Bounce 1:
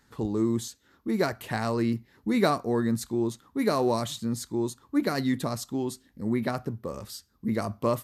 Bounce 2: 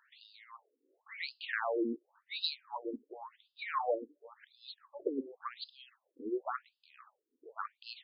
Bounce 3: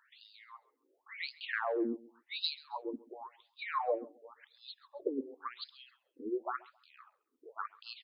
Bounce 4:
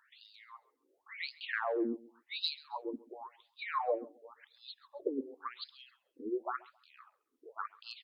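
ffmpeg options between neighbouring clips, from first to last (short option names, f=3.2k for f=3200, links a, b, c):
-af "tiltshelf=f=1.2k:g=-3.5,afftfilt=real='re*between(b*sr/1024,350*pow(3700/350,0.5+0.5*sin(2*PI*0.92*pts/sr))/1.41,350*pow(3700/350,0.5+0.5*sin(2*PI*0.92*pts/sr))*1.41)':imag='im*between(b*sr/1024,350*pow(3700/350,0.5+0.5*sin(2*PI*0.92*pts/sr))/1.41,350*pow(3700/350,0.5+0.5*sin(2*PI*0.92*pts/sr))*1.41)':win_size=1024:overlap=0.75"
-af "aecho=1:1:135|270:0.0841|0.021"
-ar 48000 -c:a aac -b:a 96k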